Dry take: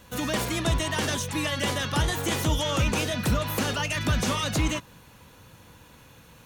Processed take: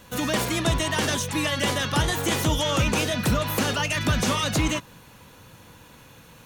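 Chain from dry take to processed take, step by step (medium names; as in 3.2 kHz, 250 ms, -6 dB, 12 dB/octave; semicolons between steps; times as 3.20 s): peaking EQ 64 Hz -4.5 dB 0.97 oct; trim +3 dB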